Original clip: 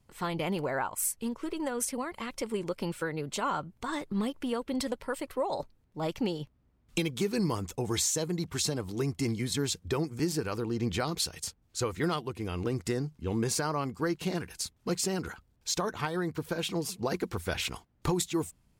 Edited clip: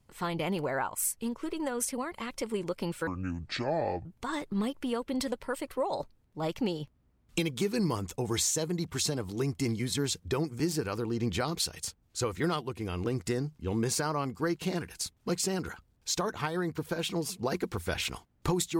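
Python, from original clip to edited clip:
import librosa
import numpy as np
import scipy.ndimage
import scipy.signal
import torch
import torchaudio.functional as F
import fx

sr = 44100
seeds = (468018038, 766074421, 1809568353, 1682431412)

y = fx.edit(x, sr, fx.speed_span(start_s=3.07, length_s=0.58, speed=0.59), tone=tone)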